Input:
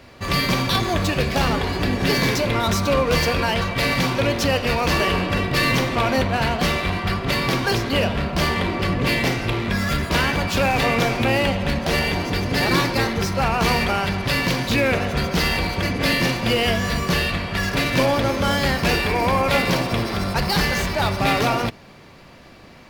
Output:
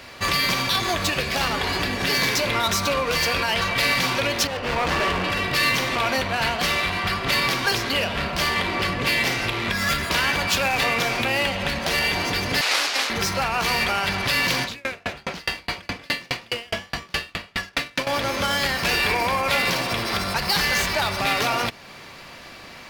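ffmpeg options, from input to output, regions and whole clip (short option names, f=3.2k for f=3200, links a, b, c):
-filter_complex "[0:a]asettb=1/sr,asplit=3[a][b][c];[a]atrim=end=4.474[d];[b]atrim=start=4.47:end=5.24,asetpts=PTS-STARTPTS,afade=t=in:d=0.004:c=qsin,afade=t=out:st=0.766:d=0.004:c=qsin,lowpass=f=1.1k:p=1,asoftclip=type=hard:threshold=-22.5dB[e];[c]atrim=start=5.236[f];[d][e]acrossfade=d=0.004:c1=hsin:c2=qsin[g];[g][f]acrossfade=d=0.004:c1=qsin:c2=hsin,asettb=1/sr,asplit=3[h][i][j];[h]atrim=end=12.614[k];[i]atrim=start=12.61:end=13.1,asetpts=PTS-STARTPTS,afade=t=in:d=0.004:c=qsin,afade=t=out:st=0.486:d=0.004:c=qsin,aemphasis=mode=production:type=75fm,aeval=exprs='abs(val(0))':c=same,highpass=360,lowpass=5.7k[l];[j]atrim=start=13.096[m];[k][l]acrossfade=d=0.004:c1=hsin:c2=qsin[n];[n][m]acrossfade=d=0.004:c1=qsin:c2=hsin,asettb=1/sr,asplit=3[o][p][q];[o]atrim=end=14.644[r];[p]atrim=start=14.64:end=18.07,asetpts=PTS-STARTPTS,afade=t=in:d=0.004:c=qsin,afade=t=out:st=3.426:d=0.004:c=qsin,adynamicsmooth=sensitivity=5.5:basefreq=3.6k,asplit=6[s][t][u][v][w][x];[t]adelay=189,afreqshift=130,volume=-11.5dB[y];[u]adelay=378,afreqshift=260,volume=-18.1dB[z];[v]adelay=567,afreqshift=390,volume=-24.6dB[aa];[w]adelay=756,afreqshift=520,volume=-31.2dB[ab];[x]adelay=945,afreqshift=650,volume=-37.7dB[ac];[s][y][z][aa][ab][ac]amix=inputs=6:normalize=0,atrim=end_sample=151263,aeval=exprs='val(0)*pow(10,-39*if(lt(mod(4.8*n/s,1),2*abs(4.8)/1000),1-mod(4.8*n/s,1)/(2*abs(4.8)/1000),(mod(4.8*n/s,1)-2*abs(4.8)/1000)/(1-2*abs(4.8)/1000))/20)':c=same[ad];[q]atrim=start=18.066[ae];[r][ad]acrossfade=d=0.004:c1=hsin:c2=qsin[af];[af][ae]acrossfade=d=0.004:c1=qsin:c2=hsin,alimiter=limit=-17dB:level=0:latency=1:release=312,tiltshelf=f=670:g=-6,volume=3dB"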